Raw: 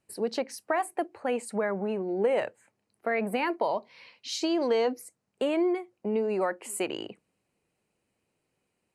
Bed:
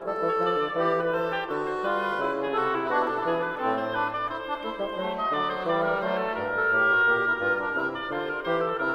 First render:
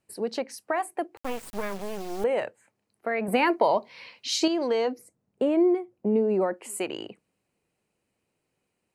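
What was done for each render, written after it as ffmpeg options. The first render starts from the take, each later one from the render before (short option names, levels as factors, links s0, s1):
-filter_complex "[0:a]asettb=1/sr,asplit=3[s0][s1][s2];[s0]atrim=end=1.174[s3];[s1]atrim=start=1.17:end=2.24,asetpts=PTS-STARTPTS,afade=t=in:d=0.004:c=qsin,afade=t=out:st=1.066:d=0.004:c=qsin,acrusher=bits=4:dc=4:mix=0:aa=0.000001[s4];[s2]atrim=start=2.236[s5];[s3][s4]acrossfade=d=0.004:c1=hsin:c2=qsin[s6];[s6][s5]acrossfade=d=0.004:c1=qsin:c2=hsin,asettb=1/sr,asplit=3[s7][s8][s9];[s7]atrim=end=3.284[s10];[s8]atrim=start=3.28:end=4.48,asetpts=PTS-STARTPTS,afade=t=in:d=0.004:c=qsin,afade=t=out:st=1.196:d=0.004:c=qsin,acontrast=57[s11];[s9]atrim=start=4.476[s12];[s10][s11]acrossfade=d=0.004:c1=hsin:c2=qsin[s13];[s13][s12]acrossfade=d=0.004:c1=qsin:c2=hsin,asettb=1/sr,asplit=3[s14][s15][s16];[s14]atrim=end=4.984[s17];[s15]atrim=start=4.98:end=6.54,asetpts=PTS-STARTPTS,afade=t=in:d=0.004:c=qsin,afade=t=out:st=1.556:d=0.004:c=qsin,tiltshelf=f=810:g=7.5[s18];[s16]atrim=start=6.536[s19];[s17][s18]acrossfade=d=0.004:c1=hsin:c2=qsin[s20];[s20][s19]acrossfade=d=0.004:c1=qsin:c2=hsin"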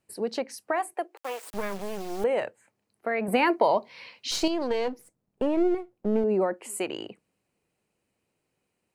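-filter_complex "[0:a]asettb=1/sr,asplit=3[s0][s1][s2];[s0]atrim=end=0.944[s3];[s1]atrim=start=0.94:end=1.54,asetpts=PTS-STARTPTS,afade=t=in:d=0.004:c=qsin,afade=t=out:st=0.596:d=0.004:c=qsin,highpass=f=390:w=0.5412,highpass=f=390:w=1.3066[s4];[s2]atrim=start=1.536[s5];[s3][s4]acrossfade=d=0.004:c1=hsin:c2=qsin[s6];[s6][s5]acrossfade=d=0.004:c1=qsin:c2=hsin,asettb=1/sr,asplit=3[s7][s8][s9];[s7]atrim=end=4.314[s10];[s8]atrim=start=4.31:end=6.24,asetpts=PTS-STARTPTS,afade=t=in:d=0.004:c=qsin,afade=t=out:st=1.926:d=0.004:c=qsin,aeval=exprs='if(lt(val(0),0),0.447*val(0),val(0))':c=same[s11];[s9]atrim=start=6.236[s12];[s10][s11]acrossfade=d=0.004:c1=hsin:c2=qsin[s13];[s13][s12]acrossfade=d=0.004:c1=qsin:c2=hsin"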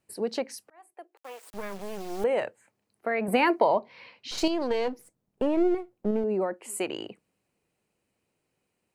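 -filter_complex "[0:a]asettb=1/sr,asplit=3[s0][s1][s2];[s0]atrim=end=3.644[s3];[s1]atrim=start=3.64:end=4.38,asetpts=PTS-STARTPTS,afade=t=in:d=0.004:c=qsin,afade=t=out:st=0.736:d=0.004:c=qsin,lowpass=f=2000:p=1[s4];[s2]atrim=start=4.376[s5];[s3][s4]acrossfade=d=0.004:c1=hsin:c2=qsin[s6];[s6][s5]acrossfade=d=0.004:c1=qsin:c2=hsin,asplit=4[s7][s8][s9][s10];[s7]atrim=end=0.7,asetpts=PTS-STARTPTS,afade=t=out:st=0.696:d=0.004:c=hsin[s11];[s8]atrim=start=0.7:end=6.112,asetpts=PTS-STARTPTS,afade=t=in:d=1.64[s12];[s9]atrim=start=6.108:end=6.682,asetpts=PTS-STARTPTS,volume=0.708[s13];[s10]atrim=start=6.678[s14];[s11][s12]concat=n=2:v=0:a=1[s15];[s15][s13]acrossfade=d=0.004:c1=hsin:c2=hsin[s16];[s16][s14]acrossfade=d=0.004:c1=hsin:c2=hsin"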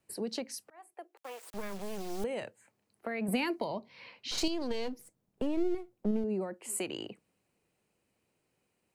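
-filter_complex "[0:a]acrossover=split=260|3000[s0][s1][s2];[s1]acompressor=threshold=0.00891:ratio=3[s3];[s0][s3][s2]amix=inputs=3:normalize=0"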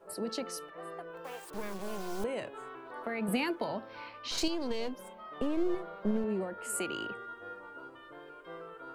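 -filter_complex "[1:a]volume=0.1[s0];[0:a][s0]amix=inputs=2:normalize=0"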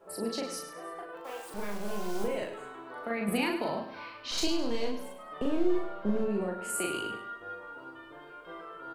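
-filter_complex "[0:a]asplit=2[s0][s1];[s1]adelay=39,volume=0.794[s2];[s0][s2]amix=inputs=2:normalize=0,aecho=1:1:103|206|309|412:0.299|0.107|0.0387|0.0139"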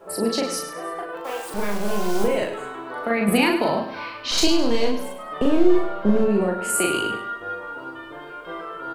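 -af "volume=3.55"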